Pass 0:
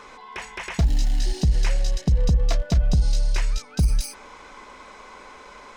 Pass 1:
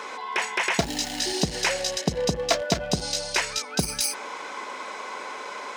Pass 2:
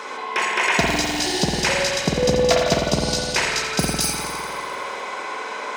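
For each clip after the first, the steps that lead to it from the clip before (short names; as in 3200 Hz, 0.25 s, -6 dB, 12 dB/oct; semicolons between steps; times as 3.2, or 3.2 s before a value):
HPF 330 Hz 12 dB/oct; notch 1200 Hz, Q 22; gain +9 dB
thin delay 86 ms, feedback 72%, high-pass 3600 Hz, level -8.5 dB; spring tank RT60 1.9 s, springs 50 ms, chirp 25 ms, DRR -1.5 dB; gain +2.5 dB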